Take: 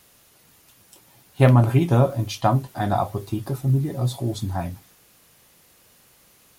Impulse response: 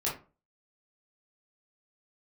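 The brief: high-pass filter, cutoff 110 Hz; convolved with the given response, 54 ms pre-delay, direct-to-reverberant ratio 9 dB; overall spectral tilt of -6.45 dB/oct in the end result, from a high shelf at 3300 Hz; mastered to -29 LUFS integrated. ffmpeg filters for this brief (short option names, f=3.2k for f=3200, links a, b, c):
-filter_complex "[0:a]highpass=110,highshelf=f=3.3k:g=7,asplit=2[a][b];[1:a]atrim=start_sample=2205,adelay=54[c];[b][c]afir=irnorm=-1:irlink=0,volume=-15dB[d];[a][d]amix=inputs=2:normalize=0,volume=-7.5dB"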